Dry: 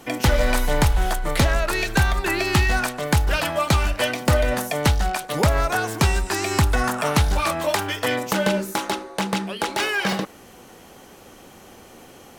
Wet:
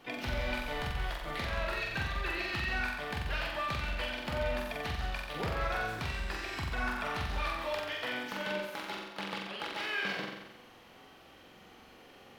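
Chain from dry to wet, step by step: pre-emphasis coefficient 0.9; compressor 3:1, threshold -34 dBFS, peak gain reduction 8.5 dB; flutter echo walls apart 7.7 m, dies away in 0.96 s; harmoniser +7 st -10 dB; air absorption 360 m; gain +5 dB

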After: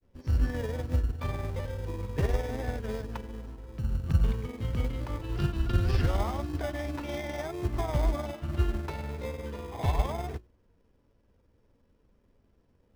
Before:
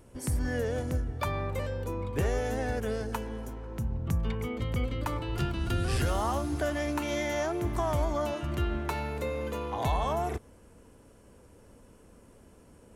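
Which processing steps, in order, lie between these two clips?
steep low-pass 5800 Hz 72 dB/oct; low shelf 78 Hz +7.5 dB; notches 60/120/180/240/300/360 Hz; grains 0.1 s, grains 20/s, spray 16 ms, pitch spread up and down by 0 st; in parallel at -6 dB: sample-and-hold 31×; on the sum: upward expander 1.5:1, over -47 dBFS

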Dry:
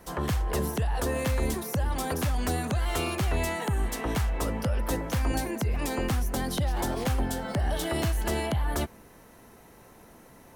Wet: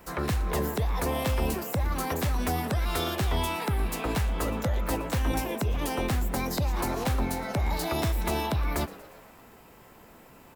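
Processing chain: frequency-shifting echo 0.117 s, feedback 62%, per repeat +120 Hz, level -19 dB; formant shift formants +4 st

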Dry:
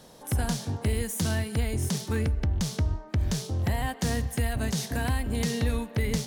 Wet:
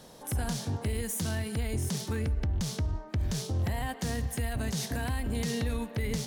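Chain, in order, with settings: limiter -23 dBFS, peak gain reduction 5.5 dB

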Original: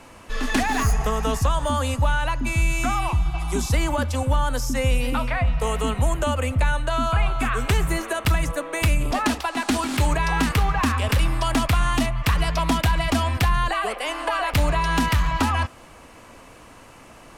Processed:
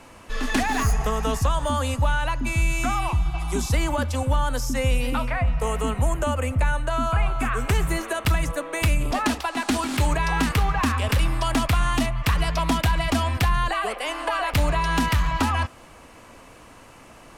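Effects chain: 5.25–7.75 bell 3700 Hz -6 dB 0.77 oct; gain -1 dB

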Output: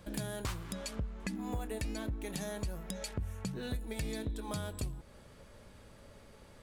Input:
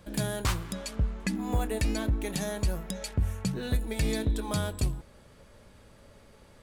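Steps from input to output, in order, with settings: compressor 3:1, threshold -36 dBFS, peak gain reduction 10.5 dB; gain -1 dB

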